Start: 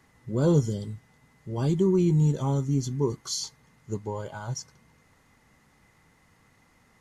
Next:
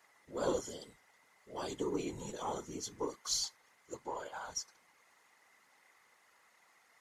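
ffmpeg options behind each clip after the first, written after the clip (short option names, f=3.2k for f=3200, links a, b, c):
-af "highpass=630,aeval=exprs='0.133*(cos(1*acos(clip(val(0)/0.133,-1,1)))-cos(1*PI/2))+0.00299*(cos(6*acos(clip(val(0)/0.133,-1,1)))-cos(6*PI/2))':c=same,afftfilt=real='hypot(re,im)*cos(2*PI*random(0))':imag='hypot(re,im)*sin(2*PI*random(1))':win_size=512:overlap=0.75,volume=3.5dB"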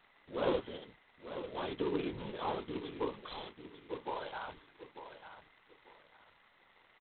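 -filter_complex "[0:a]asplit=2[a][b];[b]aecho=0:1:894|1788|2682:0.299|0.0806|0.0218[c];[a][c]amix=inputs=2:normalize=0,volume=1.5dB" -ar 8000 -c:a adpcm_g726 -b:a 16k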